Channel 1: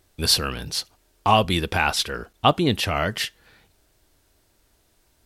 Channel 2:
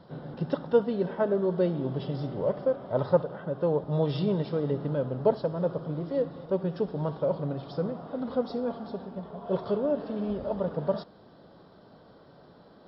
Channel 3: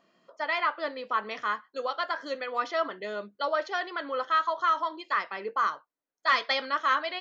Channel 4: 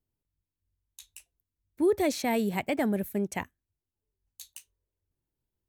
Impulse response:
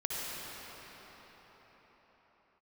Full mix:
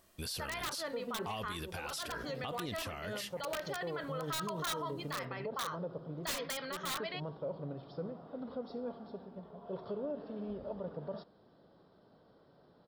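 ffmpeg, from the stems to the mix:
-filter_complex "[0:a]highshelf=f=4400:g=9.5,volume=0.299,asplit=2[s0][s1];[1:a]equalizer=f=400:w=1.5:g=2,adelay=200,volume=0.282[s2];[2:a]aeval=exprs='(mod(8.91*val(0)+1,2)-1)/8.91':c=same,volume=0.668[s3];[3:a]lowpass=2700,acompressor=threshold=0.0251:ratio=6,volume=0.158[s4];[s1]apad=whole_len=576572[s5];[s2][s5]sidechaincompress=threshold=0.01:ratio=8:attack=16:release=350[s6];[s0][s6][s3][s4]amix=inputs=4:normalize=0,alimiter=level_in=2.24:limit=0.0631:level=0:latency=1:release=47,volume=0.447"

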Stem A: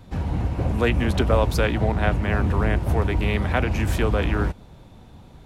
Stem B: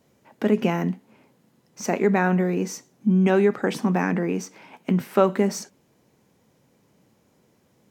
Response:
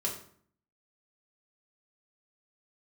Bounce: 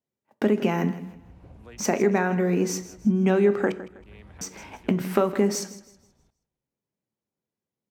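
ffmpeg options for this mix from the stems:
-filter_complex "[0:a]acompressor=threshold=0.0251:ratio=1.5,adelay=850,volume=0.1,asplit=2[s0][s1];[s1]volume=0.119[s2];[1:a]agate=range=0.0251:threshold=0.00398:ratio=16:detection=peak,acompressor=threshold=0.0708:ratio=4,volume=1.33,asplit=3[s3][s4][s5];[s3]atrim=end=3.72,asetpts=PTS-STARTPTS,afade=t=out:st=3.716:d=0.004:c=hsin[s6];[s4]atrim=start=3.72:end=4.41,asetpts=PTS-STARTPTS,volume=0[s7];[s5]atrim=start=4.41,asetpts=PTS-STARTPTS,afade=t=in:d=0.004:c=hsin[s8];[s6][s7][s8]concat=n=3:v=0:a=1,asplit=4[s9][s10][s11][s12];[s10]volume=0.2[s13];[s11]volume=0.188[s14];[s12]apad=whole_len=277962[s15];[s0][s15]sidechaincompress=threshold=0.00501:ratio=8:attack=8.2:release=255[s16];[2:a]atrim=start_sample=2205[s17];[s13][s17]afir=irnorm=-1:irlink=0[s18];[s2][s14]amix=inputs=2:normalize=0,aecho=0:1:160|320|480|640|800:1|0.34|0.116|0.0393|0.0134[s19];[s16][s9][s18][s19]amix=inputs=4:normalize=0"

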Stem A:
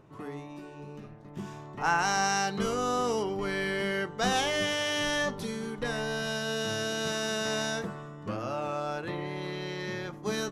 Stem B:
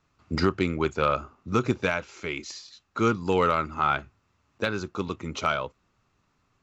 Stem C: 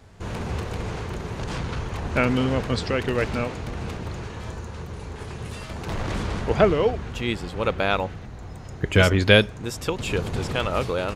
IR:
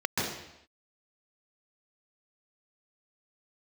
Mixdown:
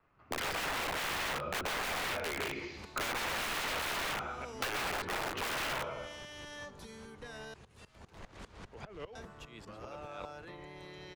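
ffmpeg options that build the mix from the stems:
-filter_complex "[0:a]alimiter=level_in=1.12:limit=0.0631:level=0:latency=1:release=90,volume=0.891,adelay=1400,volume=0.282,asplit=3[s0][s1][s2];[s0]atrim=end=7.54,asetpts=PTS-STARTPTS,afade=t=out:st=7.536:d=0.004:c=hsin[s3];[s1]atrim=start=7.54:end=9.15,asetpts=PTS-STARTPTS,volume=0[s4];[s2]atrim=start=9.15,asetpts=PTS-STARTPTS,afade=t=in:d=0.004:c=hsin[s5];[s3][s4][s5]concat=n=3:v=0:a=1[s6];[1:a]adynamicsmooth=sensitivity=3.5:basefreq=2100,volume=1,asplit=2[s7][s8];[s8]volume=0.398[s9];[2:a]alimiter=limit=0.178:level=0:latency=1:release=14,aeval=exprs='val(0)*pow(10,-20*if(lt(mod(-5*n/s,1),2*abs(-5)/1000),1-mod(-5*n/s,1)/(2*abs(-5)/1000),(mod(-5*n/s,1)-2*abs(-5)/1000)/(1-2*abs(-5)/1000))/20)':c=same,adelay=2250,volume=0.224[s10];[3:a]atrim=start_sample=2205[s11];[s9][s11]afir=irnorm=-1:irlink=0[s12];[s6][s7][s10][s12]amix=inputs=4:normalize=0,aeval=exprs='(mod(11.9*val(0)+1,2)-1)/11.9':c=same,acrossover=split=120|380|3200[s13][s14][s15][s16];[s13]acompressor=threshold=0.00447:ratio=4[s17];[s14]acompressor=threshold=0.00398:ratio=4[s18];[s15]acompressor=threshold=0.02:ratio=4[s19];[s16]acompressor=threshold=0.00562:ratio=4[s20];[s17][s18][s19][s20]amix=inputs=4:normalize=0,equalizer=f=120:w=0.31:g=-4.5"

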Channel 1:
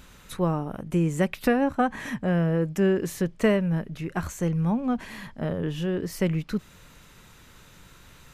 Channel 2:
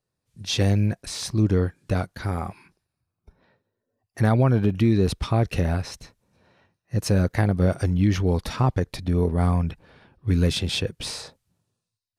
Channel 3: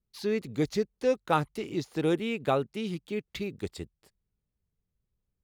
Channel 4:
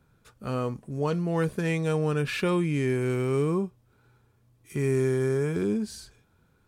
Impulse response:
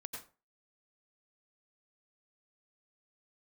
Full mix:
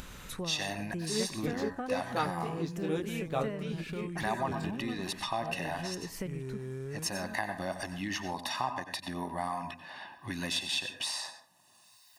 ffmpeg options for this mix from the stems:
-filter_complex "[0:a]volume=0.355,asplit=2[s0][s1];[s1]volume=0.158[s2];[1:a]highpass=520,aecho=1:1:1.1:0.93,volume=0.708,asplit=3[s3][s4][s5];[s4]volume=0.531[s6];[2:a]flanger=delay=18:depth=5:speed=1.7,adelay=850,volume=0.668[s7];[3:a]equalizer=f=72:w=0.83:g=11.5,adelay=1500,volume=0.266[s8];[s5]apad=whole_len=360556[s9];[s8][s9]sidechaincompress=threshold=0.0224:ratio=8:attack=16:release=678[s10];[s0][s3][s10]amix=inputs=3:normalize=0,acompressor=threshold=0.0158:ratio=6,volume=1[s11];[4:a]atrim=start_sample=2205[s12];[s2][s6]amix=inputs=2:normalize=0[s13];[s13][s12]afir=irnorm=-1:irlink=0[s14];[s7][s11][s14]amix=inputs=3:normalize=0,acompressor=mode=upward:threshold=0.0178:ratio=2.5"

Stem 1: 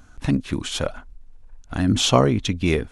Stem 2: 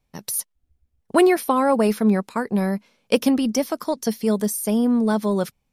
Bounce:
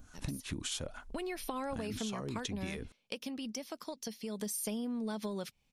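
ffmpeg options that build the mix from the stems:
-filter_complex "[0:a]highshelf=f=4900:g=10.5,acompressor=threshold=0.0794:ratio=6,acrossover=split=620[s0][s1];[s0]aeval=exprs='val(0)*(1-0.7/2+0.7/2*cos(2*PI*3.5*n/s))':c=same[s2];[s1]aeval=exprs='val(0)*(1-0.7/2-0.7/2*cos(2*PI*3.5*n/s))':c=same[s3];[s2][s3]amix=inputs=2:normalize=0,volume=0.562[s4];[1:a]firequalizer=gain_entry='entry(1300,0);entry(2700,9);entry(12000,-1)':delay=0.05:min_phase=1,acompressor=threshold=0.0891:ratio=6,volume=1.68,afade=t=in:st=1.05:d=0.56:silence=0.298538,afade=t=out:st=2.44:d=0.47:silence=0.398107,afade=t=in:st=4.31:d=0.27:silence=0.266073[s5];[s4][s5]amix=inputs=2:normalize=0,acompressor=threshold=0.0178:ratio=6"

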